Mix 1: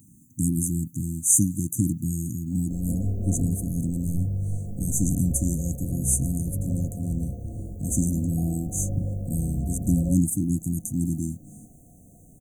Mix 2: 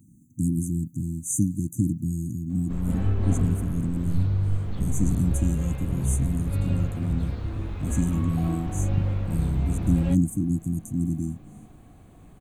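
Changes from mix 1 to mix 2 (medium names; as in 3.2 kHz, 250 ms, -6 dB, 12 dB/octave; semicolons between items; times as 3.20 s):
background: remove rippled Chebyshev low-pass 730 Hz, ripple 6 dB; master: add treble shelf 3.9 kHz -12 dB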